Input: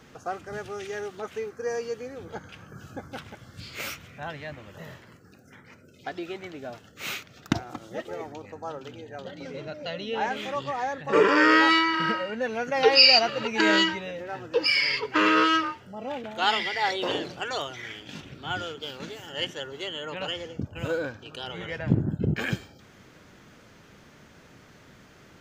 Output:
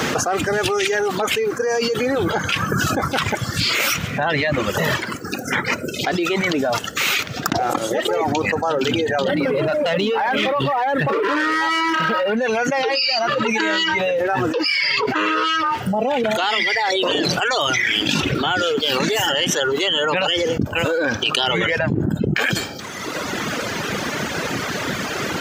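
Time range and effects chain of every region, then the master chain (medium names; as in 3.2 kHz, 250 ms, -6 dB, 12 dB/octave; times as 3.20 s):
9.28–12.37 s: distance through air 290 m + compression 4:1, threshold -36 dBFS + waveshaping leveller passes 2
whole clip: reverb removal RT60 1.4 s; high-pass 250 Hz 6 dB/octave; level flattener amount 100%; trim -6.5 dB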